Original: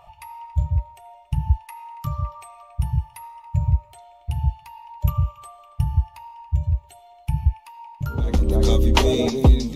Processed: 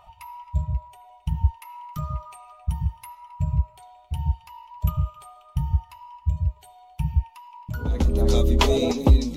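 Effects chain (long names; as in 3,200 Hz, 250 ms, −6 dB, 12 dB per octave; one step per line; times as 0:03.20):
flanger 0.63 Hz, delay 3.4 ms, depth 2.4 ms, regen −57%
wrong playback speed 24 fps film run at 25 fps
level +2 dB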